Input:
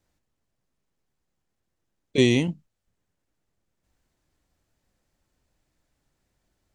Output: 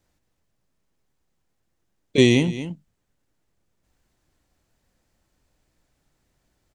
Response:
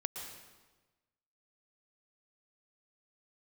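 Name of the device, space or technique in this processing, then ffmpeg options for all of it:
ducked delay: -filter_complex "[0:a]asplit=3[link_01][link_02][link_03];[link_02]adelay=221,volume=-8dB[link_04];[link_03]apad=whole_len=307169[link_05];[link_04][link_05]sidechaincompress=threshold=-35dB:ratio=4:attack=16:release=214[link_06];[link_01][link_06]amix=inputs=2:normalize=0,volume=3.5dB"

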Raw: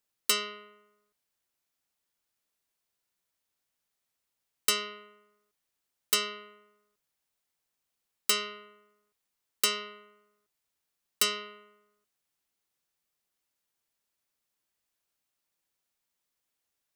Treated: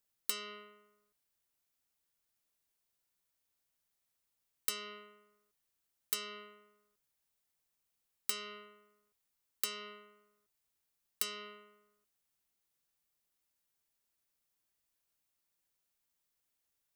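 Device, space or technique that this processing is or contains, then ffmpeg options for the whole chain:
ASMR close-microphone chain: -af "lowshelf=frequency=130:gain=6,acompressor=threshold=-33dB:ratio=5,highshelf=frequency=8700:gain=5.5,volume=-3.5dB"

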